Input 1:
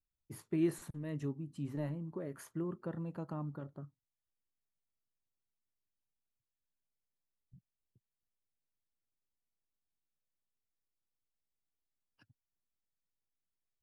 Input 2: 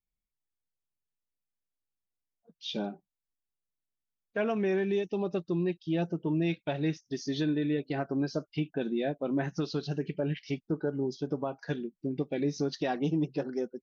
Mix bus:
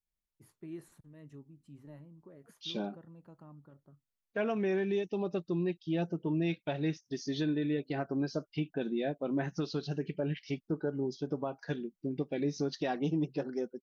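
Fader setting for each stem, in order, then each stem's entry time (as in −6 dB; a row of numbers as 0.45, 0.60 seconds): −12.5, −2.5 decibels; 0.10, 0.00 seconds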